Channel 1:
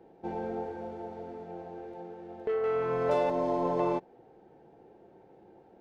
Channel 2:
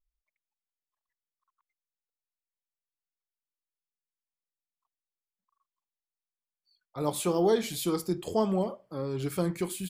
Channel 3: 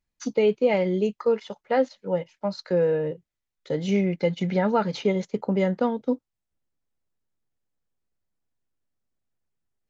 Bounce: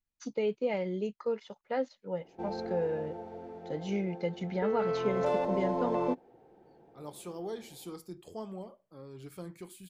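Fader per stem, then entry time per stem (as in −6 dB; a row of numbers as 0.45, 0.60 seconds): −2.5, −14.5, −10.0 decibels; 2.15, 0.00, 0.00 seconds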